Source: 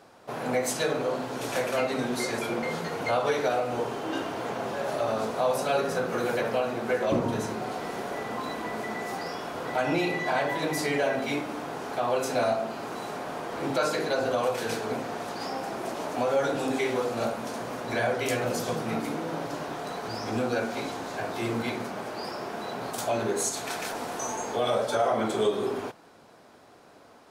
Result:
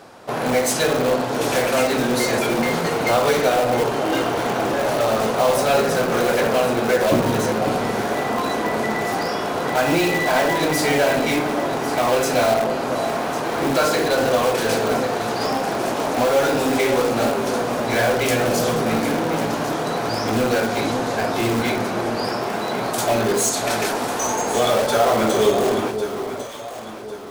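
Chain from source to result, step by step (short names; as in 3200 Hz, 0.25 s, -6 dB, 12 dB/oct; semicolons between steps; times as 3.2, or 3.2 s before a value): in parallel at -8.5 dB: wrapped overs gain 24.5 dB; on the sum: echo with dull and thin repeats by turns 0.55 s, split 880 Hz, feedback 60%, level -7 dB; gain +7.5 dB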